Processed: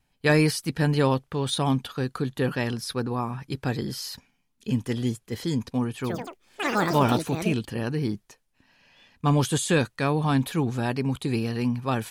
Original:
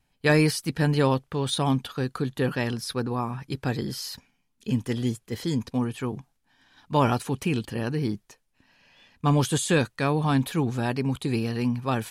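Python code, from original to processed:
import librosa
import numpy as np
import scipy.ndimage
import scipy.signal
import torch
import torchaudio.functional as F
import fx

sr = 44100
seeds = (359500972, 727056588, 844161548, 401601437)

y = fx.echo_pitch(x, sr, ms=101, semitones=6, count=3, db_per_echo=-3.0, at=(5.94, 8.04))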